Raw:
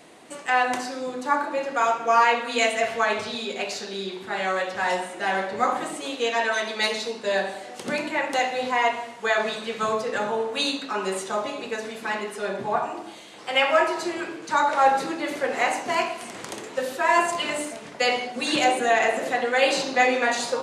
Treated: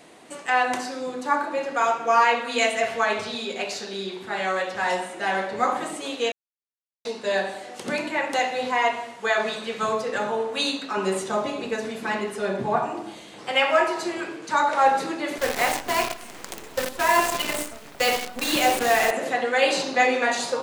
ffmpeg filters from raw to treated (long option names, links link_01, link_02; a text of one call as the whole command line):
ffmpeg -i in.wav -filter_complex "[0:a]asettb=1/sr,asplit=3[link_01][link_02][link_03];[link_01]atrim=end=10.974[link_04];[link_02]atrim=start=10.97:end=13.52,asetpts=PTS-STARTPTS,afade=type=in:duration=0.004:curve=qsin,afade=type=out:start_time=2.546:duration=0.004:curve=qsin,lowshelf=frequency=310:gain=8.5[link_05];[link_03]atrim=start=13.516[link_06];[link_04][link_05]acrossfade=duration=0.004:curve1=hsin:curve2=qsin[link_07];[link_07][link_06]acrossfade=duration=0.004:curve1=qsin:curve2=hsin,asettb=1/sr,asplit=3[link_08][link_09][link_10];[link_08]atrim=end=15.384[link_11];[link_09]atrim=start=15.38:end=19.11,asetpts=PTS-STARTPTS,afade=type=in:duration=0.004:curve=qsin,afade=type=out:start_time=3.726:duration=0.004:curve=qsin,acrusher=bits=5:dc=4:mix=0:aa=0.000001[link_12];[link_10]atrim=start=19.106[link_13];[link_11][link_12]acrossfade=duration=0.004:curve1=hsin:curve2=qsin[link_14];[link_14][link_13]acrossfade=duration=0.004:curve1=qsin:curve2=hsin,asplit=3[link_15][link_16][link_17];[link_15]atrim=end=6.32,asetpts=PTS-STARTPTS,afade=type=out:start_time=6.316:duration=0.004:curve=hsin[link_18];[link_16]atrim=start=6.32:end=7.05,asetpts=PTS-STARTPTS,volume=0[link_19];[link_17]atrim=start=7.05,asetpts=PTS-STARTPTS,afade=type=in:duration=0.004:curve=hsin[link_20];[link_18][link_19][link_20]concat=n=3:v=0:a=1" out.wav